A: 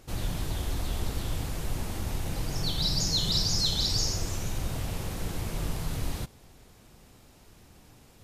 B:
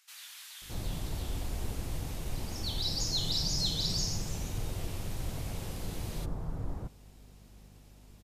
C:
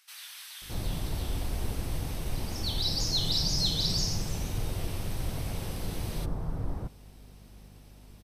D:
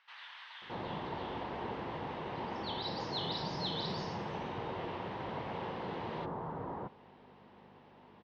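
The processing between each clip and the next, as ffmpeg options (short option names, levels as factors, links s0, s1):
-filter_complex "[0:a]aeval=exprs='val(0)+0.00316*(sin(2*PI*50*n/s)+sin(2*PI*2*50*n/s)/2+sin(2*PI*3*50*n/s)/3+sin(2*PI*4*50*n/s)/4+sin(2*PI*5*50*n/s)/5)':c=same,acrossover=split=1400[s0][s1];[s0]adelay=620[s2];[s2][s1]amix=inputs=2:normalize=0,volume=0.596"
-af "bandreject=f=7000:w=5.9,volume=1.5"
-af "highpass=290,equalizer=f=290:t=q:w=4:g=-5,equalizer=f=640:t=q:w=4:g=-3,equalizer=f=940:t=q:w=4:g=7,equalizer=f=1400:t=q:w=4:g=-3,equalizer=f=2400:t=q:w=4:g=-7,lowpass=f=2700:w=0.5412,lowpass=f=2700:w=1.3066,volume=1.58"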